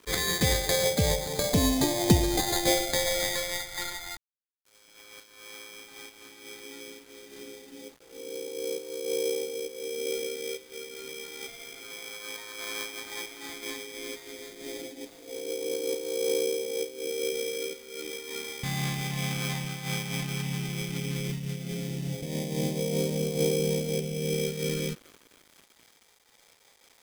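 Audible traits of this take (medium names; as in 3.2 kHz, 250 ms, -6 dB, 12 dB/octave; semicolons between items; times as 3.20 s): aliases and images of a low sample rate 2.8 kHz, jitter 0%; phasing stages 2, 0.14 Hz, lowest notch 440–1300 Hz; a quantiser's noise floor 10-bit, dither none; random flutter of the level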